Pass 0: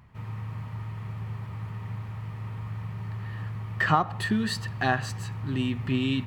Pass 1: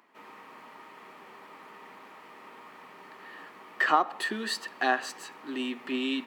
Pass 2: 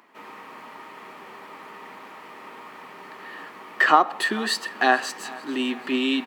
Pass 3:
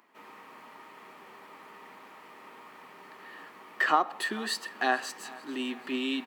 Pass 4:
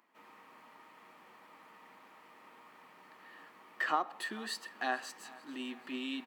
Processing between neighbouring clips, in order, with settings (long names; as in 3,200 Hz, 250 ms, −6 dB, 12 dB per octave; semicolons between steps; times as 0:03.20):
Butterworth high-pass 270 Hz 36 dB per octave
repeating echo 440 ms, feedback 54%, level −21 dB; level +7 dB
high-shelf EQ 7,800 Hz +4.5 dB; level −8 dB
notch filter 400 Hz, Q 12; level −7.5 dB